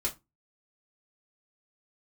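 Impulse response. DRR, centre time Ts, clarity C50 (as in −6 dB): −3.5 dB, 13 ms, 17.0 dB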